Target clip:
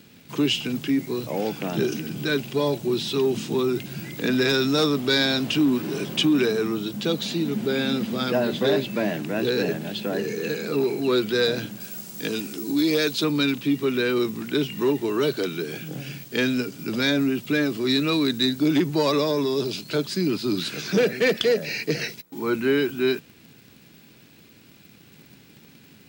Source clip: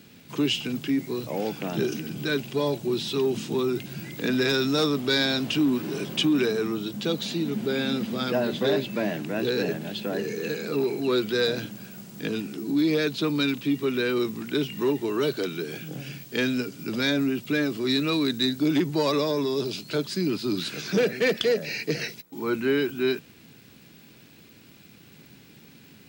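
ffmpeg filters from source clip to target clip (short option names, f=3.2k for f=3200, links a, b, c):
-filter_complex "[0:a]asettb=1/sr,asplit=3[a][b][c];[a]atrim=end=11.804[d];[b]atrim=start=11.8:end=13.24,asetpts=PTS-STARTPTS,afade=t=in:d=0.004:c=qsin,afade=t=out:st=1.436:d=0.004:c=qsin,bass=f=250:g=-5,treble=f=4k:g=8[e];[c]atrim=start=13.236[f];[d][e]acrossfade=d=0.004:c1=hsin:c2=qsin[g];[g][f]acrossfade=d=0.004:c1=qsin:c2=hsin,asplit=2[h][i];[i]acrusher=bits=6:mix=0:aa=0.000001,volume=-10dB[j];[h][j]amix=inputs=2:normalize=0"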